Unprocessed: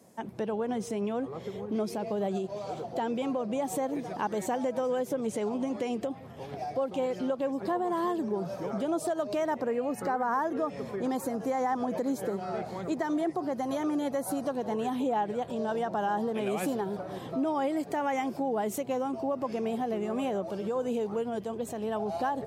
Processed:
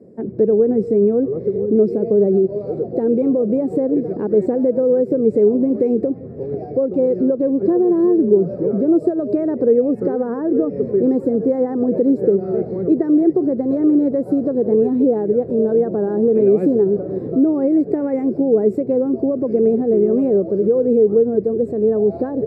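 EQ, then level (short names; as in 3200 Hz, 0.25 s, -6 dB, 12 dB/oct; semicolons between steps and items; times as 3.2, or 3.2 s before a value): running mean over 14 samples; resonant low shelf 620 Hz +12.5 dB, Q 3; 0.0 dB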